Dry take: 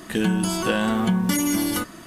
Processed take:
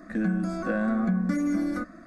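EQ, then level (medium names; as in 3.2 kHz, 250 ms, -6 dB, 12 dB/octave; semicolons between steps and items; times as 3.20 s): tape spacing loss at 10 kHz 27 dB; static phaser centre 610 Hz, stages 8; -1.0 dB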